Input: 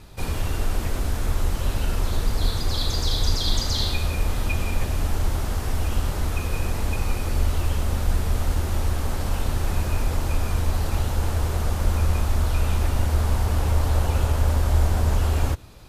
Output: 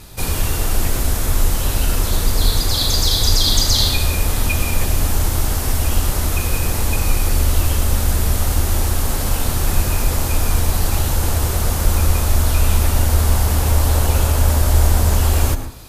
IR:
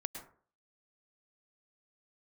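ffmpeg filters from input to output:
-filter_complex "[0:a]crystalizer=i=2:c=0,asplit=2[a][b];[1:a]atrim=start_sample=2205[c];[b][c]afir=irnorm=-1:irlink=0,volume=4.5dB[d];[a][d]amix=inputs=2:normalize=0,volume=-2.5dB"

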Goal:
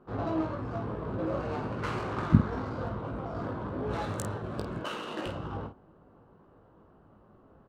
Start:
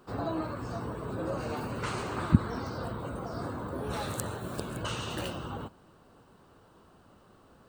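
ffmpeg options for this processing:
-filter_complex "[0:a]asettb=1/sr,asplit=3[a][b][c];[a]atrim=end=4.784[d];[b]atrim=start=4.78:end=5.26,asetpts=PTS-STARTPTS,afade=t=in:d=0.004:c=qsin,afade=t=out:st=0.476:d=0.004:c=qsin,highpass=f=220:w=0.5412,highpass=f=220:w=1.3066[e];[c]atrim=start=5.256[f];[d][e]acrossfade=d=0.004:c1=hsin:c2=qsin[g];[g][f]acrossfade=d=0.004:c1=qsin:c2=hsin,adynamicsmooth=sensitivity=6.5:basefreq=1.3k,aecho=1:1:19|50:0.501|0.398"

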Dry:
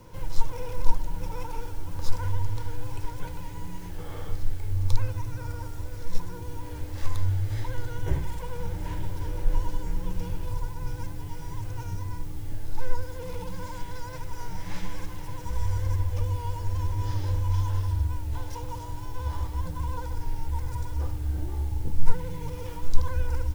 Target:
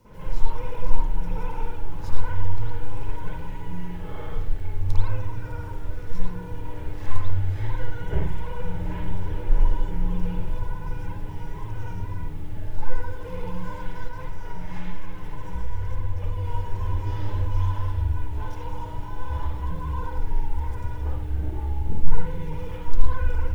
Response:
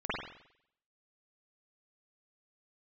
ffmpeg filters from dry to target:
-filter_complex "[1:a]atrim=start_sample=2205,afade=t=out:st=0.19:d=0.01,atrim=end_sample=8820[a];[0:a][a]afir=irnorm=-1:irlink=0,asplit=3[b][c][d];[b]afade=t=out:st=14.07:d=0.02[e];[c]acompressor=threshold=-21dB:ratio=1.5,afade=t=in:st=14.07:d=0.02,afade=t=out:st=16.44:d=0.02[f];[d]afade=t=in:st=16.44:d=0.02[g];[e][f][g]amix=inputs=3:normalize=0,volume=-4dB"

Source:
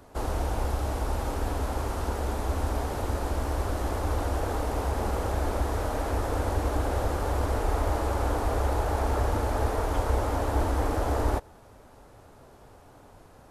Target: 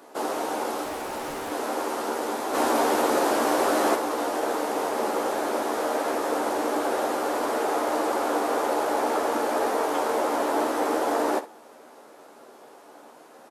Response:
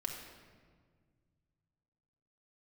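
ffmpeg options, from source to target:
-filter_complex "[0:a]highpass=f=260:w=0.5412,highpass=f=260:w=1.3066,asettb=1/sr,asplit=3[a][b][c];[a]atrim=end=0.844[d];[b]atrim=start=0.84:end=1.52,asetpts=PTS-STARTPTS,afade=t=in:d=0.004:c=qsin,afade=t=out:st=0.676:d=0.004:c=qsin,asoftclip=type=hard:threshold=-35.5dB[e];[c]atrim=start=1.516[f];[d][e]acrossfade=d=0.004:c1=hsin:c2=qsin[g];[g][f]acrossfade=d=0.004:c1=qsin:c2=hsin,asplit=3[h][i][j];[h]afade=t=out:st=2.53:d=0.02[k];[i]acontrast=54,afade=t=in:st=2.53:d=0.02,afade=t=out:st=3.94:d=0.02[l];[j]afade=t=in:st=3.94:d=0.02[m];[k][l][m]amix=inputs=3:normalize=0,asplit=2[n][o];[o]aecho=0:1:13|65:0.501|0.2[p];[n][p]amix=inputs=2:normalize=0,volume=4.5dB"

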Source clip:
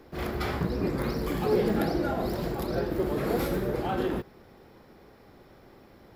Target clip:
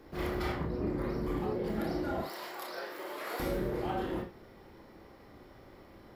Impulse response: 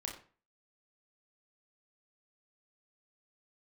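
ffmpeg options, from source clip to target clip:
-filter_complex "[0:a]asettb=1/sr,asplit=3[a][b][c];[a]atrim=end=0.524[d];[b]atrim=start=0.52:end=1.64,asetpts=PTS-STARTPTS,afade=t=in:d=0.004:c=qsin,afade=t=out:st=1.116:d=0.004:c=qsin,highshelf=f=2.1k:g=-9.5[e];[c]atrim=start=1.636[f];[d][e]acrossfade=d=0.004:c1=hsin:c2=qsin[g];[g][f]acrossfade=d=0.004:c1=qsin:c2=hsin,asettb=1/sr,asplit=3[h][i][j];[h]atrim=end=2.214[k];[i]atrim=start=2.21:end=3.4,asetpts=PTS-STARTPTS,afade=t=in:d=0.004:c=qsin,afade=t=out:st=1.186:d=0.004:c=qsin,highpass=940[l];[j]atrim=start=3.396[m];[k][l]acrossfade=d=0.004:c1=hsin:c2=qsin[n];[n][m]acrossfade=d=0.004:c1=qsin:c2=hsin,acompressor=threshold=-29dB:ratio=10[o];[1:a]atrim=start_sample=2205,afade=t=out:st=0.14:d=0.01,atrim=end_sample=6615[p];[o][p]afir=irnorm=-1:irlink=0"

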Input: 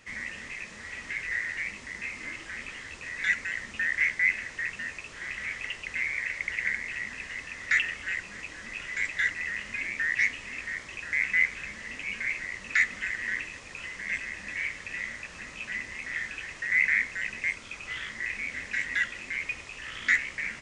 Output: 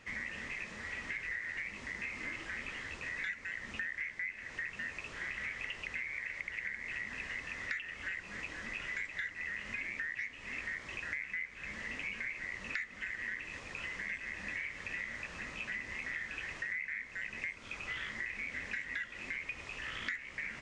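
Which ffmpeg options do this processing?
-af "lowpass=f=3.4k:p=1,acompressor=threshold=-36dB:ratio=10"

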